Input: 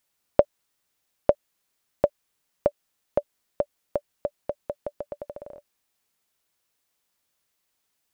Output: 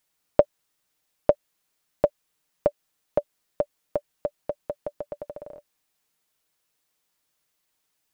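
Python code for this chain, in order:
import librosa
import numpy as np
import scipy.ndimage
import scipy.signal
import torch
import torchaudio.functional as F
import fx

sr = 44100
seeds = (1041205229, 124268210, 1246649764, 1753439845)

y = x + 0.34 * np.pad(x, (int(6.5 * sr / 1000.0), 0))[:len(x)]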